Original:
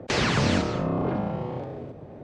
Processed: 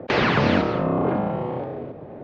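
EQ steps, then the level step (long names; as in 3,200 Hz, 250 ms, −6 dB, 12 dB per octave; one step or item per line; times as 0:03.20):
linear-phase brick-wall low-pass 8,500 Hz
high-frequency loss of the air 300 metres
low-shelf EQ 140 Hz −12 dB
+7.5 dB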